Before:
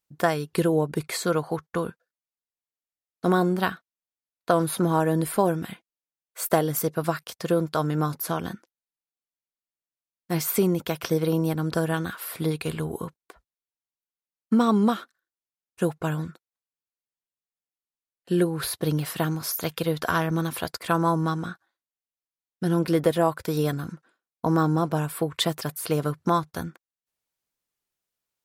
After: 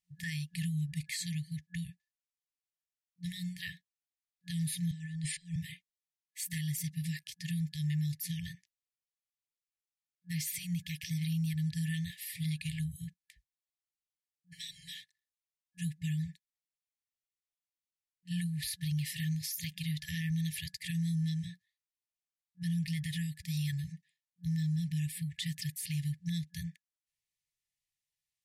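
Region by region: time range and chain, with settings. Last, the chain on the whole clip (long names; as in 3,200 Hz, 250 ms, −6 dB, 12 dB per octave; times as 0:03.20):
0:04.91–0:05.56: Chebyshev band-pass filter 140–8,500 Hz, order 4 + compressor whose output falls as the input rises −31 dBFS
whole clip: brick-wall band-stop 180–1,700 Hz; low-pass filter 11,000 Hz 12 dB per octave; brickwall limiter −24 dBFS; level −3.5 dB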